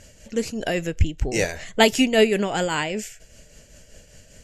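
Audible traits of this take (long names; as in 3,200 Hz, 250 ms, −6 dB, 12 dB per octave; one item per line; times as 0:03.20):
tremolo triangle 5.1 Hz, depth 55%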